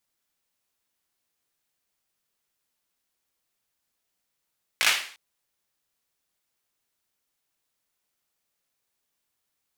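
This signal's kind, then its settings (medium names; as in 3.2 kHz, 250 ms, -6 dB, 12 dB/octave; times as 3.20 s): hand clap length 0.35 s, apart 18 ms, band 2.3 kHz, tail 0.48 s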